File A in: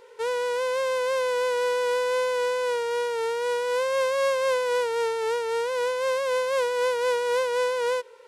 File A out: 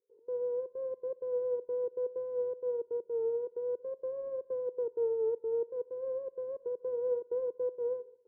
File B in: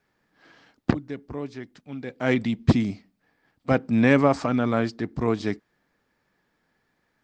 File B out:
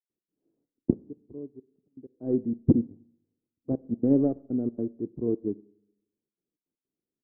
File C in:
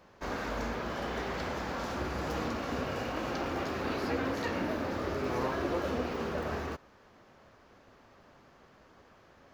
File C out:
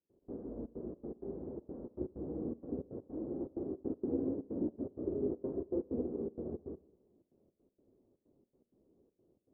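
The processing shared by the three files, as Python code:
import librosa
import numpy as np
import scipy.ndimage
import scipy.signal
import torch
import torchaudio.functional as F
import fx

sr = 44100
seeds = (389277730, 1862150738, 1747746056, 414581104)

y = fx.self_delay(x, sr, depth_ms=0.29)
y = fx.low_shelf(y, sr, hz=120.0, db=-6.5)
y = fx.step_gate(y, sr, bpm=160, pattern='.x.xxxx.xx', floor_db=-24.0, edge_ms=4.5)
y = fx.ladder_lowpass(y, sr, hz=440.0, resonance_pct=45)
y = fx.rev_schroeder(y, sr, rt60_s=0.97, comb_ms=30, drr_db=13.5)
y = fx.upward_expand(y, sr, threshold_db=-55.0, expansion=1.5)
y = y * 10.0 ** (7.5 / 20.0)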